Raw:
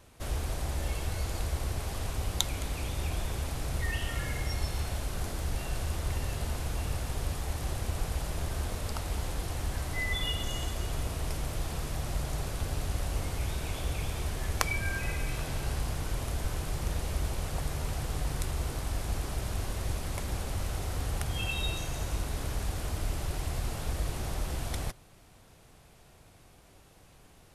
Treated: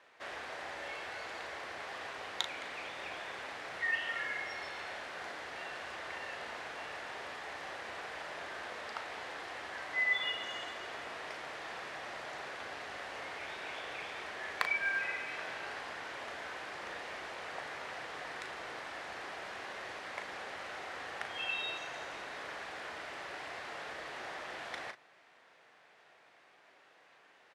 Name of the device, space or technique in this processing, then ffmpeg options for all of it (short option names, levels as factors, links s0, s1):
megaphone: -filter_complex "[0:a]highpass=550,lowpass=3500,equalizer=f=1800:t=o:w=0.59:g=7.5,asoftclip=type=hard:threshold=0.211,asplit=2[s0][s1];[s1]adelay=37,volume=0.376[s2];[s0][s2]amix=inputs=2:normalize=0,volume=0.841"